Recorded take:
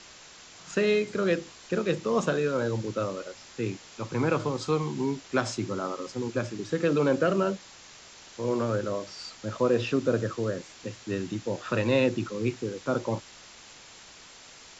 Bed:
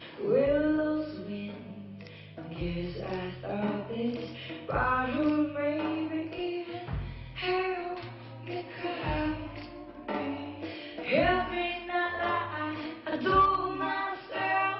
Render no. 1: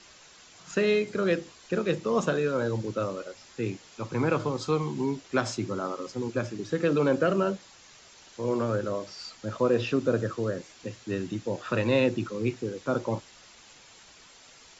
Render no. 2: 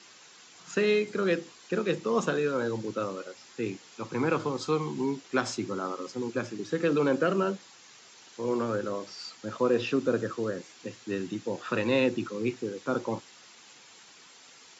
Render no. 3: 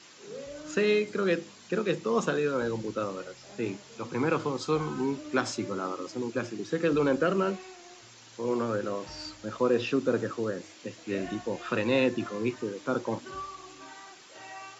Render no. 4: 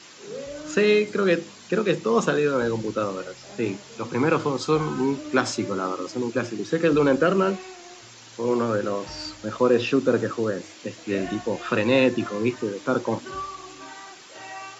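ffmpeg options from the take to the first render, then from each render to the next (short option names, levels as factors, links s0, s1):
-af "afftdn=nr=6:nf=-50"
-af "highpass=170,equalizer=f=610:w=5.3:g=-6.5"
-filter_complex "[1:a]volume=0.15[s0];[0:a][s0]amix=inputs=2:normalize=0"
-af "volume=2"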